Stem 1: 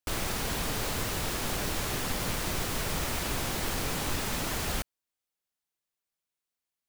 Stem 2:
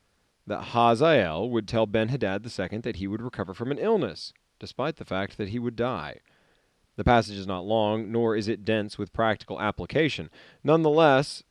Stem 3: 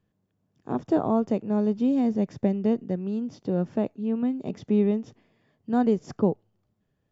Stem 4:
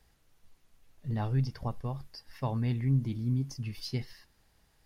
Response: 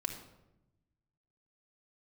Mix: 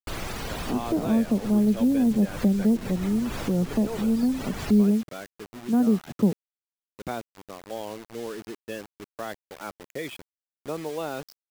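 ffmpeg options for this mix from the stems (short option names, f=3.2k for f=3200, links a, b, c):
-filter_complex "[0:a]volume=0dB[a];[1:a]highpass=f=270:p=1,volume=-8.5dB[b];[2:a]equalizer=f=210:w=1.9:g=6,volume=-1.5dB,asplit=2[c][d];[3:a]adelay=250,volume=-19dB[e];[d]apad=whole_len=303676[f];[a][f]sidechaincompress=threshold=-28dB:ratio=12:attack=20:release=199[g];[g][b][c][e]amix=inputs=4:normalize=0,afftfilt=real='re*gte(hypot(re,im),0.0178)':imag='im*gte(hypot(re,im),0.0178)':win_size=1024:overlap=0.75,acrossover=split=340[h][i];[i]acompressor=threshold=-30dB:ratio=5[j];[h][j]amix=inputs=2:normalize=0,acrusher=bits=6:mix=0:aa=0.000001"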